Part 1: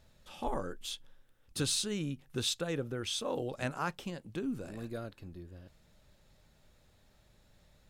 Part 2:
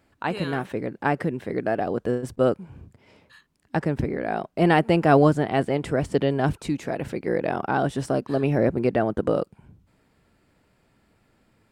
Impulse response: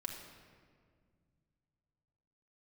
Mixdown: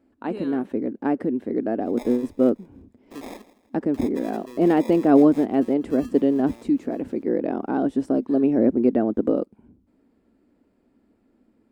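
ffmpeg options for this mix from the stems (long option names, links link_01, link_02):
-filter_complex "[0:a]acrusher=samples=30:mix=1:aa=0.000001,adelay=1550,volume=-6dB,asplit=3[link_01][link_02][link_03];[link_01]atrim=end=3.42,asetpts=PTS-STARTPTS,afade=type=out:start_time=3.416:duration=0.004:curve=hsin[link_04];[link_02]atrim=start=3.42:end=3.94,asetpts=PTS-STARTPTS,volume=0[link_05];[link_03]atrim=start=3.94,asetpts=PTS-STARTPTS,afade=type=in:duration=0.004:curve=hsin[link_06];[link_04][link_05][link_06]concat=n=3:v=0:a=1,asplit=2[link_07][link_08];[link_08]volume=-17.5dB[link_09];[1:a]tiltshelf=frequency=680:gain=8.5,volume=-4.5dB[link_10];[link_09]aecho=0:1:163|326|489|652|815:1|0.32|0.102|0.0328|0.0105[link_11];[link_07][link_10][link_11]amix=inputs=3:normalize=0,lowshelf=frequency=190:width_type=q:width=3:gain=-9"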